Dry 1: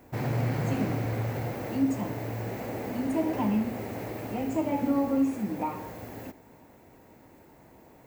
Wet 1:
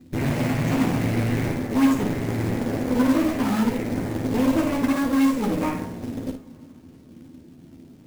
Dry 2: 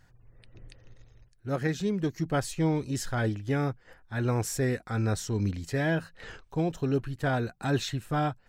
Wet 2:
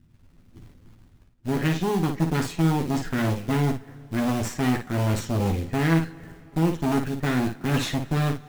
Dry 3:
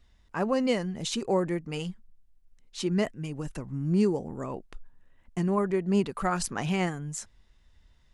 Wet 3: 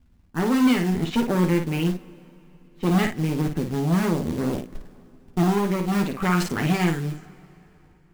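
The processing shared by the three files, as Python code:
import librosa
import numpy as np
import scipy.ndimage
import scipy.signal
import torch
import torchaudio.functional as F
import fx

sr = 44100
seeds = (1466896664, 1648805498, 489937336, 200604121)

y = fx.env_lowpass(x, sr, base_hz=370.0, full_db=-22.5)
y = fx.graphic_eq(y, sr, hz=(125, 250, 500, 1000, 2000, 8000), db=(4, 9, -10, -8, 4, 7))
y = fx.cheby_harmonics(y, sr, harmonics=(8,), levels_db=(-16,), full_scale_db=-12.5)
y = fx.rider(y, sr, range_db=4, speed_s=0.5)
y = 10.0 ** (-16.0 / 20.0) * np.tanh(y / 10.0 ** (-16.0 / 20.0))
y = fx.bass_treble(y, sr, bass_db=-4, treble_db=-7)
y = fx.quant_float(y, sr, bits=2)
y = fx.room_early_taps(y, sr, ms=(12, 55), db=(-5.5, -6.5))
y = fx.rev_plate(y, sr, seeds[0], rt60_s=3.6, hf_ratio=0.8, predelay_ms=0, drr_db=19.5)
y = y * 10.0 ** (4.0 / 20.0)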